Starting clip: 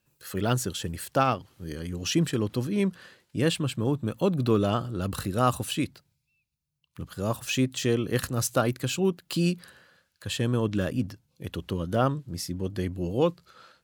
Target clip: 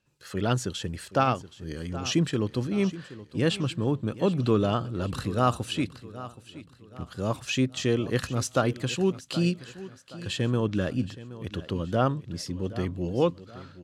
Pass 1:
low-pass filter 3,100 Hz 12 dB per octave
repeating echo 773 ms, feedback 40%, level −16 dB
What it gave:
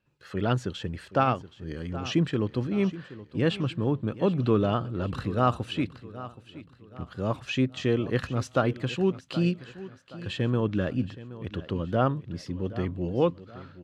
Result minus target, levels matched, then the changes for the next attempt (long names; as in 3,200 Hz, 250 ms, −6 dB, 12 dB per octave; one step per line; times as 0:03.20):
8,000 Hz band −11.5 dB
change: low-pass filter 6,900 Hz 12 dB per octave